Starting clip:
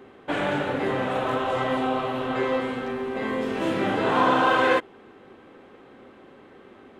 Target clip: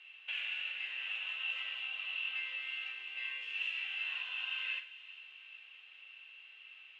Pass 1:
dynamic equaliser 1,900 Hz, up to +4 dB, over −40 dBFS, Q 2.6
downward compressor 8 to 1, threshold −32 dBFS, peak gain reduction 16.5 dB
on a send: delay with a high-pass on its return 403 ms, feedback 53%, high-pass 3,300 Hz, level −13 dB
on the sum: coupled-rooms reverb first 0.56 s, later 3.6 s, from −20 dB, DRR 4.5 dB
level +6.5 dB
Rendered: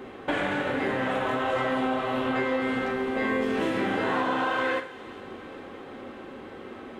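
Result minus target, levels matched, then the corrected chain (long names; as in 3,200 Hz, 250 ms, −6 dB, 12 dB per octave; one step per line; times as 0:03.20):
2,000 Hz band −3.0 dB
dynamic equaliser 1,900 Hz, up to +4 dB, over −40 dBFS, Q 2.6
downward compressor 8 to 1, threshold −32 dBFS, peak gain reduction 16.5 dB
four-pole ladder band-pass 2,800 Hz, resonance 90%
on a send: delay with a high-pass on its return 403 ms, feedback 53%, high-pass 3,300 Hz, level −13 dB
on the sum: coupled-rooms reverb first 0.56 s, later 3.6 s, from −20 dB, DRR 4.5 dB
level +6.5 dB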